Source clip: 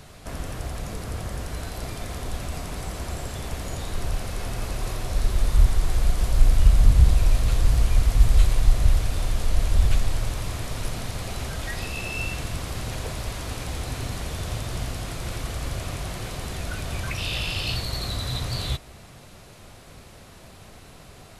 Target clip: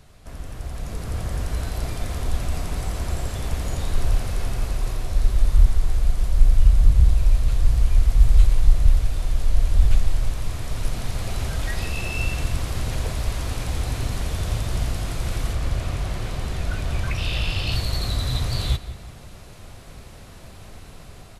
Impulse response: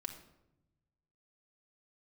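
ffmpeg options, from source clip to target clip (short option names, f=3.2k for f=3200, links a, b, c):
-filter_complex "[0:a]asettb=1/sr,asplit=3[a][b][c];[a]atrim=end=15.534[d];[b]atrim=start=15.53:end=17.72,asetpts=PTS-STARTPTS,afade=t=in:d=0.004:c=qsin,afade=t=out:st=2.186:d=0.004:c=qsin,highshelf=f=6.1k:g=-7[e];[c]atrim=start=17.716[f];[d][e]acrossfade=d=0.004:c1=hsin:c2=qsin[g];[g][f]acrossfade=d=0.004:c1=qsin:c2=hsin,asplit=2[h][i];[i]adelay=178,lowpass=f=3.4k:p=1,volume=-15dB,asplit=2[j][k];[k]adelay=178,lowpass=f=3.4k:p=1,volume=0.46,asplit=2[l][m];[m]adelay=178,lowpass=f=3.4k:p=1,volume=0.46,asplit=2[n][o];[o]adelay=178,lowpass=f=3.4k:p=1,volume=0.46[p];[h][j][l][n][p]amix=inputs=5:normalize=0,dynaudnorm=f=200:g=9:m=9dB,lowshelf=f=80:g=9,volume=-8dB"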